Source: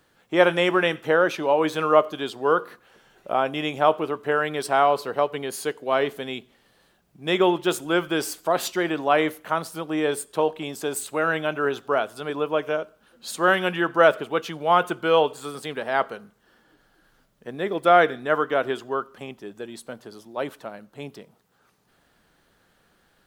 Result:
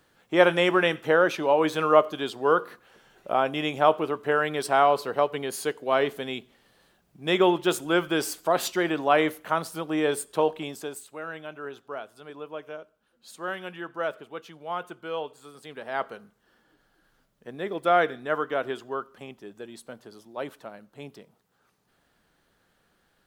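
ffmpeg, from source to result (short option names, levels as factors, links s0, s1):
-af "volume=2.37,afade=t=out:st=10.55:d=0.47:silence=0.237137,afade=t=in:st=15.55:d=0.61:silence=0.375837"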